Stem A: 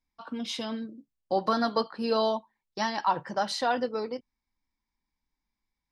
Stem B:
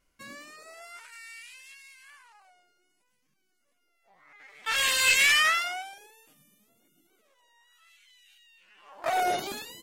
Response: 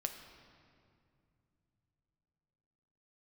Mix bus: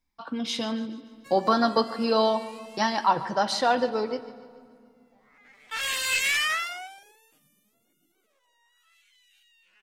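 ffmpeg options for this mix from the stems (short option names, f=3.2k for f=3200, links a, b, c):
-filter_complex "[0:a]volume=0dB,asplit=4[a][b][c][d];[b]volume=-3.5dB[e];[c]volume=-13.5dB[f];[1:a]adelay=1050,volume=-3.5dB[g];[d]apad=whole_len=479537[h];[g][h]sidechaincompress=threshold=-29dB:ratio=8:attack=38:release=119[i];[2:a]atrim=start_sample=2205[j];[e][j]afir=irnorm=-1:irlink=0[k];[f]aecho=0:1:144|288|432|576|720|864|1008:1|0.48|0.23|0.111|0.0531|0.0255|0.0122[l];[a][i][k][l]amix=inputs=4:normalize=0"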